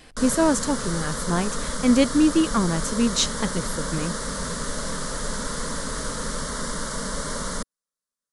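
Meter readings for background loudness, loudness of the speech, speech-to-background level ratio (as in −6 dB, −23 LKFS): −29.5 LKFS, −23.5 LKFS, 6.0 dB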